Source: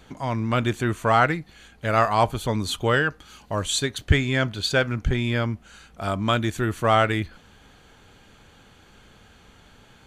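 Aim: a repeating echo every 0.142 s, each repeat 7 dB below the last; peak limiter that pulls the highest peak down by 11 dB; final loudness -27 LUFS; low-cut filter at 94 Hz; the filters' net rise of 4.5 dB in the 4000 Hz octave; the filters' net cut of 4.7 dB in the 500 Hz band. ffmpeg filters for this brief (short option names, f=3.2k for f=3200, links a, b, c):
-af "highpass=94,equalizer=f=500:t=o:g=-6.5,equalizer=f=4k:t=o:g=5.5,alimiter=limit=-16.5dB:level=0:latency=1,aecho=1:1:142|284|426|568|710:0.447|0.201|0.0905|0.0407|0.0183,volume=0.5dB"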